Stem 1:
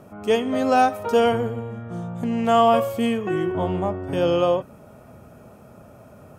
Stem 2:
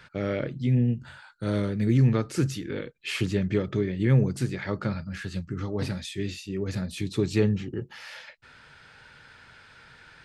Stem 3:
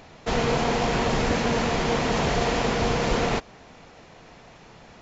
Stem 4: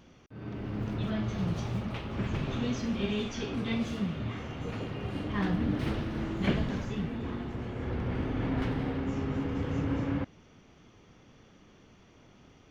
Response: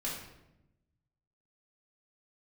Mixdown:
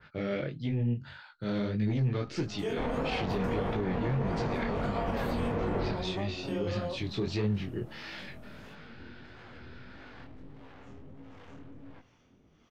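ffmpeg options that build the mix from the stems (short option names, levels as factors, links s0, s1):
-filter_complex "[0:a]highpass=f=110:w=0.5412,highpass=f=110:w=1.3066,acompressor=threshold=0.0631:ratio=3,adelay=2350,volume=0.531[s0];[1:a]lowpass=f=5000:w=0.5412,lowpass=f=5000:w=1.3066,asoftclip=type=tanh:threshold=0.15,adynamicequalizer=threshold=0.00398:dfrequency=2100:dqfactor=0.7:tfrequency=2100:tqfactor=0.7:attack=5:release=100:ratio=0.375:range=2:mode=boostabove:tftype=highshelf,volume=1,asplit=2[s1][s2];[2:a]lowpass=1500,adelay=2500,volume=0.398,asplit=2[s3][s4];[s4]volume=0.668[s5];[3:a]aeval=exprs='(tanh(70.8*val(0)+0.4)-tanh(0.4))/70.8':c=same,acrossover=split=570[s6][s7];[s6]aeval=exprs='val(0)*(1-0.7/2+0.7/2*cos(2*PI*1.5*n/s))':c=same[s8];[s7]aeval=exprs='val(0)*(1-0.7/2-0.7/2*cos(2*PI*1.5*n/s))':c=same[s9];[s8][s9]amix=inputs=2:normalize=0,acompressor=threshold=0.00562:ratio=5,adelay=1750,volume=0.944,asplit=2[s10][s11];[s11]volume=0.15[s12];[s2]apad=whole_len=385161[s13];[s0][s13]sidechaincompress=threshold=0.0447:ratio=8:attack=16:release=390[s14];[4:a]atrim=start_sample=2205[s15];[s5][s12]amix=inputs=2:normalize=0[s16];[s16][s15]afir=irnorm=-1:irlink=0[s17];[s14][s1][s3][s10][s17]amix=inputs=5:normalize=0,flanger=delay=18.5:depth=6.6:speed=1.6,alimiter=limit=0.075:level=0:latency=1:release=63"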